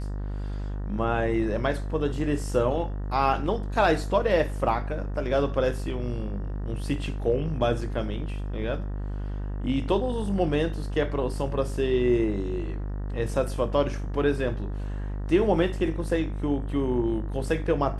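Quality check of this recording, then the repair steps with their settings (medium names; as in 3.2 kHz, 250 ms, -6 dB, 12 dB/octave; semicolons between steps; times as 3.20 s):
buzz 50 Hz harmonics 38 -31 dBFS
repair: de-hum 50 Hz, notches 38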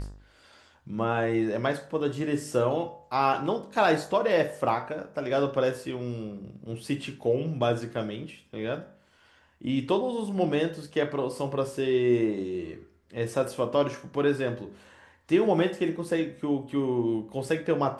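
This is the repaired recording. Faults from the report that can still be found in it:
nothing left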